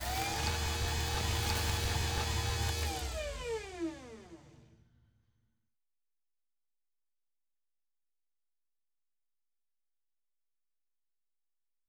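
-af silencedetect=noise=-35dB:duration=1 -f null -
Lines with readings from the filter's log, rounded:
silence_start: 3.89
silence_end: 11.88 | silence_duration: 7.99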